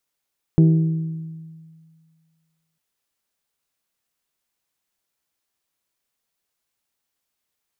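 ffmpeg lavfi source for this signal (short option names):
-f lavfi -i "aevalsrc='0.355*pow(10,-3*t/1.92)*sin(2*PI*161*t)+0.141*pow(10,-3*t/1.182)*sin(2*PI*322*t)+0.0562*pow(10,-3*t/1.04)*sin(2*PI*386.4*t)+0.0224*pow(10,-3*t/0.89)*sin(2*PI*483*t)+0.00891*pow(10,-3*t/0.728)*sin(2*PI*644*t)+0.00355*pow(10,-3*t/0.622)*sin(2*PI*805*t)':d=2.2:s=44100"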